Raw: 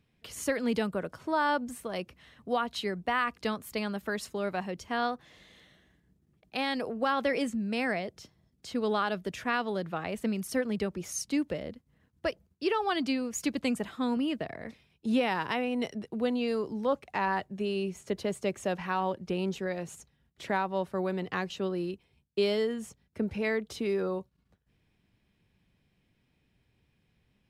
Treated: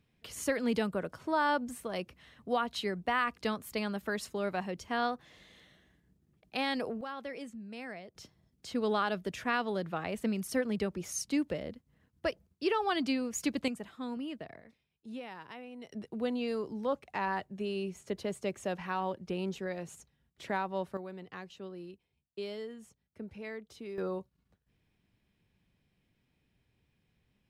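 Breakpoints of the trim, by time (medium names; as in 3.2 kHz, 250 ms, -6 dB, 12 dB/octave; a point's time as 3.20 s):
-1.5 dB
from 7.01 s -13 dB
from 8.15 s -1.5 dB
from 13.68 s -9 dB
from 14.60 s -16 dB
from 15.92 s -4 dB
from 20.97 s -12.5 dB
from 23.98 s -3.5 dB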